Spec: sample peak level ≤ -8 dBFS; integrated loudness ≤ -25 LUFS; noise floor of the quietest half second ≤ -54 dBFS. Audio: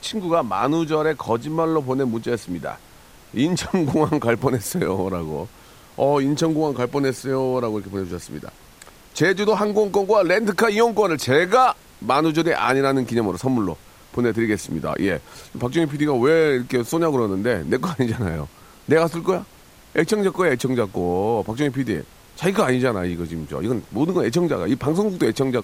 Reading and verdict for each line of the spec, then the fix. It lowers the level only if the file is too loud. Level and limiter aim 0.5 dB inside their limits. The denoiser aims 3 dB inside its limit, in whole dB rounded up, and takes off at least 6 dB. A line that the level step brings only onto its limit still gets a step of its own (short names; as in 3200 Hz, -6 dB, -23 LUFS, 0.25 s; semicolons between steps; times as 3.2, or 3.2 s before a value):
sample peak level -2.5 dBFS: fail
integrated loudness -21.0 LUFS: fail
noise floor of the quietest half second -48 dBFS: fail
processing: denoiser 6 dB, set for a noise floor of -48 dBFS; gain -4.5 dB; limiter -8.5 dBFS